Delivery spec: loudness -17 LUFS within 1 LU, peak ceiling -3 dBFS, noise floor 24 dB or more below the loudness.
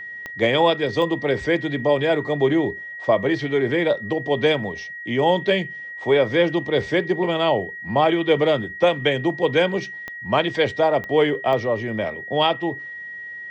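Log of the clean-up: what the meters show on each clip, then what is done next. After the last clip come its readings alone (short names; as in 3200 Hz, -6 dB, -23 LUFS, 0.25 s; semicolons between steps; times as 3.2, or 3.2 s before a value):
clicks 5; steady tone 1900 Hz; tone level -32 dBFS; loudness -21.0 LUFS; peak -5.5 dBFS; loudness target -17.0 LUFS
-> de-click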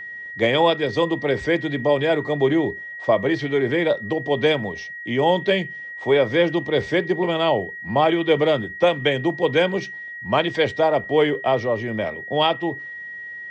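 clicks 0; steady tone 1900 Hz; tone level -32 dBFS
-> notch 1900 Hz, Q 30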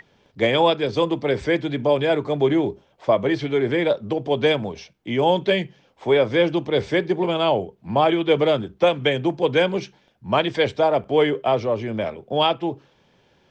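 steady tone none; loudness -21.0 LUFS; peak -6.0 dBFS; loudness target -17.0 LUFS
-> gain +4 dB; limiter -3 dBFS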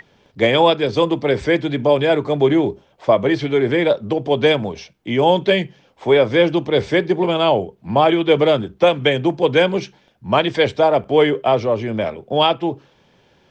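loudness -17.5 LUFS; peak -3.0 dBFS; noise floor -57 dBFS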